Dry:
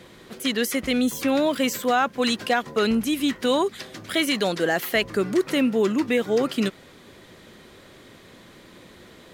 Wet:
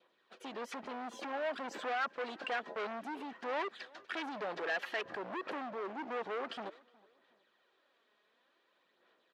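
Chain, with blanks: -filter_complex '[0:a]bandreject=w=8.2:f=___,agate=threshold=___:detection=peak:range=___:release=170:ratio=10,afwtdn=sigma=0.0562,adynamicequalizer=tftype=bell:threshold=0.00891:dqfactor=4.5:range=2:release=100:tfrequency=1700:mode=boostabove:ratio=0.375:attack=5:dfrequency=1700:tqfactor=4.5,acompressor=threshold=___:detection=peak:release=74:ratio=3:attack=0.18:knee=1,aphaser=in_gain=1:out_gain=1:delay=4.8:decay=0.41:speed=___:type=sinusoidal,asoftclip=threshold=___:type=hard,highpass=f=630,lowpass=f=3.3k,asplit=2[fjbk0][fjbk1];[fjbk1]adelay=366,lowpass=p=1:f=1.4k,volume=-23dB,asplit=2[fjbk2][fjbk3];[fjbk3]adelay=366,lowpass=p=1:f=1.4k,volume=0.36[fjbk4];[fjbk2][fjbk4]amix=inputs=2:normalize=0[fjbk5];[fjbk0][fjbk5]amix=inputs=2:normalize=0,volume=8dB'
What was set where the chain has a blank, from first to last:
2.1k, -39dB, -13dB, -36dB, 0.55, -38dB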